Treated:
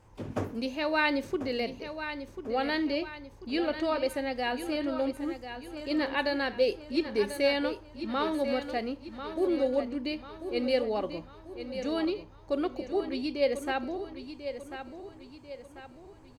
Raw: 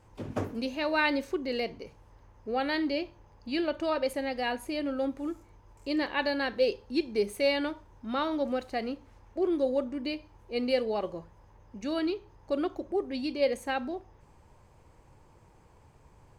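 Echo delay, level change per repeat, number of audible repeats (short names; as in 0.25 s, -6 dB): 1.042 s, -7.0 dB, 4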